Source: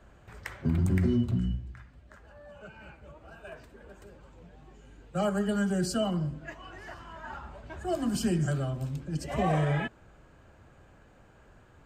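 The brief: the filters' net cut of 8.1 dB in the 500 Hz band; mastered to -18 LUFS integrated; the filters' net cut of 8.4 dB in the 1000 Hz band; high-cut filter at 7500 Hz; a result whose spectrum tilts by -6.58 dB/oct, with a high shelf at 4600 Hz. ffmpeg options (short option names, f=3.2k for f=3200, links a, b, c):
-af "lowpass=7.5k,equalizer=f=500:t=o:g=-9,equalizer=f=1k:t=o:g=-8.5,highshelf=f=4.6k:g=4.5,volume=13.5dB"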